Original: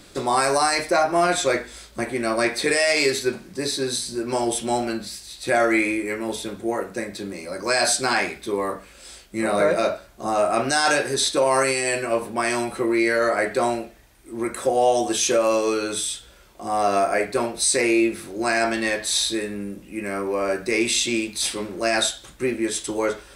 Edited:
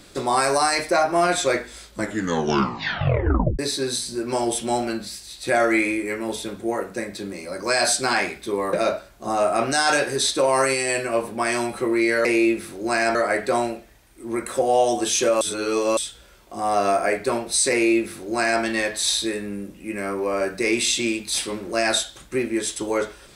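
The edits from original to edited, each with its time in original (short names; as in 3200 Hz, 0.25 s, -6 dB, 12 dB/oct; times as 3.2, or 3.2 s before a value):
1.89 tape stop 1.70 s
8.73–9.71 cut
15.49–16.05 reverse
17.8–18.7 copy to 13.23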